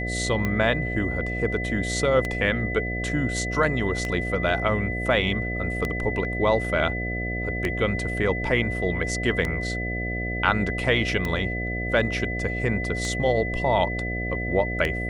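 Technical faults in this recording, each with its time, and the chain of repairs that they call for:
buzz 60 Hz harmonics 12 -30 dBFS
tick 33 1/3 rpm -13 dBFS
tone 2000 Hz -30 dBFS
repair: de-click; de-hum 60 Hz, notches 12; notch 2000 Hz, Q 30

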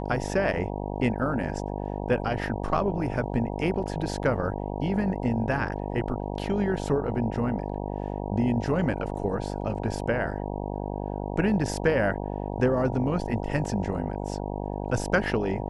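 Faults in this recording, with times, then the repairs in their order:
buzz 50 Hz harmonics 19 -32 dBFS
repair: de-hum 50 Hz, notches 19

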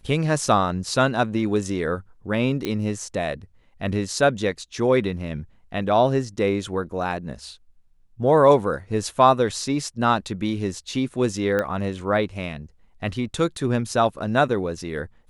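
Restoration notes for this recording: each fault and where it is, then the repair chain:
2.65 pop -12 dBFS
11.59 pop -12 dBFS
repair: de-click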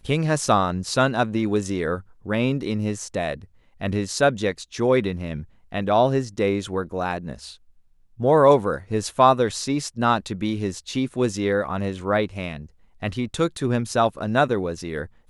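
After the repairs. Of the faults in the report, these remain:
none

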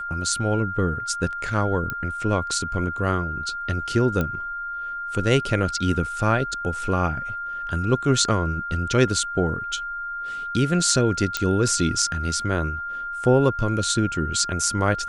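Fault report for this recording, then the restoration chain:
tone 1400 Hz -28 dBFS
1.9 pop -14 dBFS
4.21 pop -12 dBFS
11.37 pop -7 dBFS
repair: de-click; notch 1400 Hz, Q 30

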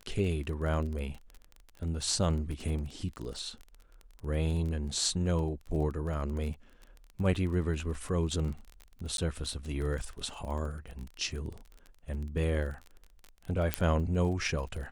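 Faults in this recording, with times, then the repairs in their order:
crackle 25/s -37 dBFS
9.17–9.18 gap 12 ms
13.74 pop -11 dBFS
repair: de-click; interpolate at 9.17, 12 ms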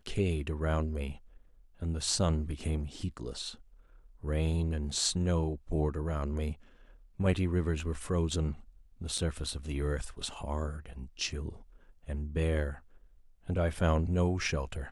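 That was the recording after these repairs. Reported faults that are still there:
13.74 pop

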